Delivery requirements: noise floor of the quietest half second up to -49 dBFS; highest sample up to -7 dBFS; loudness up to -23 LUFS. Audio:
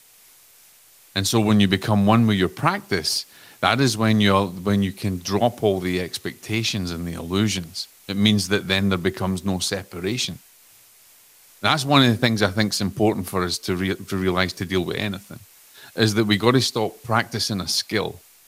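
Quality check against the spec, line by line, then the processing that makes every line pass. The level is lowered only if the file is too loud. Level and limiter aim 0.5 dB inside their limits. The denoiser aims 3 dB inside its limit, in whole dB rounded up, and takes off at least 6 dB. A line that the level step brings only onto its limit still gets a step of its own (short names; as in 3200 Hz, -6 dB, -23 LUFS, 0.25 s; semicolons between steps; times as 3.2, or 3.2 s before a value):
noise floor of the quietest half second -52 dBFS: OK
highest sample -2.5 dBFS: fail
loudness -21.5 LUFS: fail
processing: gain -2 dB; limiter -7.5 dBFS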